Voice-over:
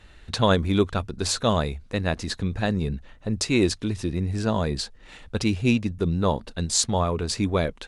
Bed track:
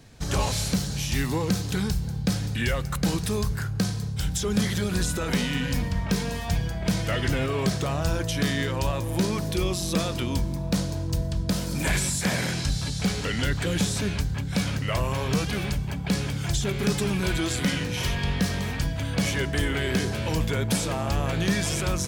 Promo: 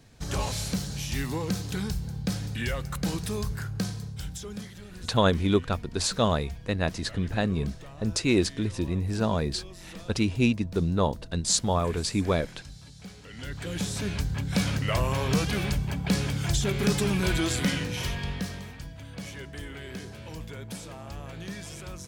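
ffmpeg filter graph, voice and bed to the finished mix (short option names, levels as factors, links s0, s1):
-filter_complex "[0:a]adelay=4750,volume=0.794[s0];[1:a]volume=5.31,afade=t=out:st=3.79:d=0.94:silence=0.188365,afade=t=in:st=13.27:d=1.29:silence=0.112202,afade=t=out:st=17.46:d=1.29:silence=0.199526[s1];[s0][s1]amix=inputs=2:normalize=0"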